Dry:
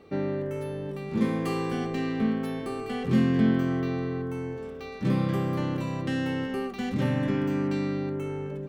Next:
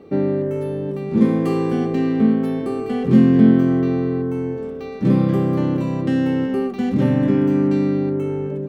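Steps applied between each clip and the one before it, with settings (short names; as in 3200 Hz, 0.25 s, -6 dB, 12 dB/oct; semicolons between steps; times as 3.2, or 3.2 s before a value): bell 280 Hz +11 dB 3 oct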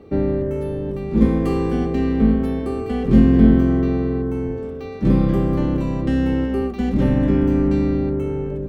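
octaver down 2 oct, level -4 dB; gain -1 dB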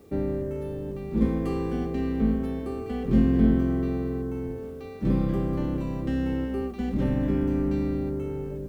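requantised 10-bit, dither triangular; gain -8 dB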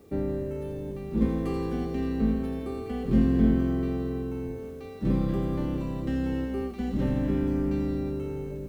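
thin delay 84 ms, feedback 75%, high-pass 3000 Hz, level -4.5 dB; gain -1.5 dB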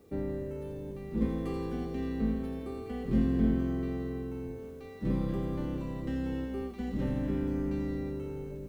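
resonator 490 Hz, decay 0.55 s, mix 70%; gain +5 dB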